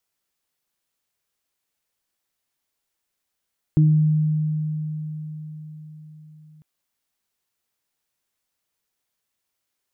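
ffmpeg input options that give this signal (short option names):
-f lavfi -i "aevalsrc='0.266*pow(10,-3*t/4.86)*sin(2*PI*154*t)+0.1*pow(10,-3*t/0.47)*sin(2*PI*308*t)':d=2.85:s=44100"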